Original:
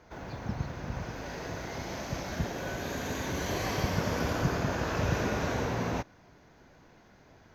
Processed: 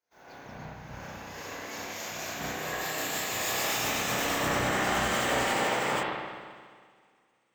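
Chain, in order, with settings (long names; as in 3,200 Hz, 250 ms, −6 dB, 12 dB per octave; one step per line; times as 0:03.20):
pitch glide at a constant tempo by +5 semitones starting unshifted
RIAA equalisation recording
hard clipping −30.5 dBFS, distortion −12 dB
spring reverb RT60 3.4 s, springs 32/50 ms, chirp 70 ms, DRR −6.5 dB
multiband upward and downward expander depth 100%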